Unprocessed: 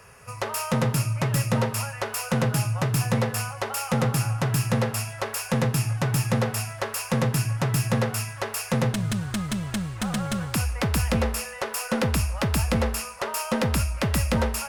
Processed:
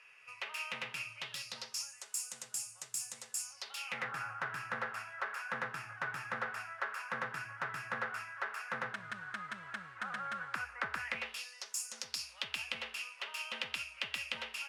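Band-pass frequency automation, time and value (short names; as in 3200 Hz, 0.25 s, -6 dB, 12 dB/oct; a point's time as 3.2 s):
band-pass, Q 3.3
1.05 s 2600 Hz
2.03 s 7600 Hz
3.42 s 7600 Hz
4.14 s 1500 Hz
10.95 s 1500 Hz
11.83 s 7800 Hz
12.52 s 2900 Hz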